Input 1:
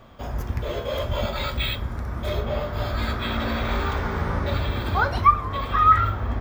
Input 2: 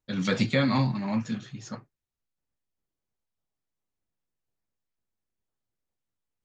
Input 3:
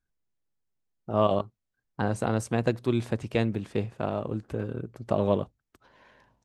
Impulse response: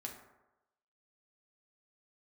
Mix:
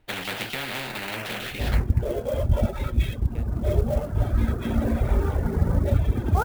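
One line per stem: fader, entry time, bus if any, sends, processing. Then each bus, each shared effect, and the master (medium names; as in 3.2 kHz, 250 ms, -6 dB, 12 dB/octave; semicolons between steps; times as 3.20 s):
-1.0 dB, 1.40 s, no send, reverb removal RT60 1.7 s; tilt shelf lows +9 dB, about 910 Hz
-1.0 dB, 0.00 s, no send, spectrum-flattening compressor 10:1
-17.5 dB, 0.00 s, no send, none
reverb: none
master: low-pass 3.5 kHz 24 dB/octave; peaking EQ 1.1 kHz -7 dB 0.35 oct; sampling jitter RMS 0.021 ms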